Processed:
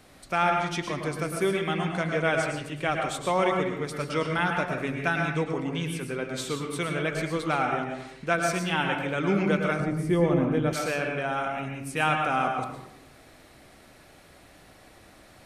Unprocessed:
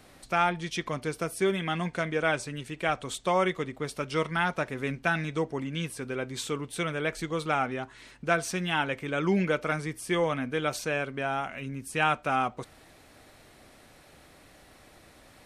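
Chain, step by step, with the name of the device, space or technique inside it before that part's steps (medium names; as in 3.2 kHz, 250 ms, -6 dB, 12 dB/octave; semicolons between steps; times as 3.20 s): bathroom (reverberation RT60 0.85 s, pre-delay 101 ms, DRR 2.5 dB); 9.80–10.73 s: tilt shelf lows +8.5 dB, about 630 Hz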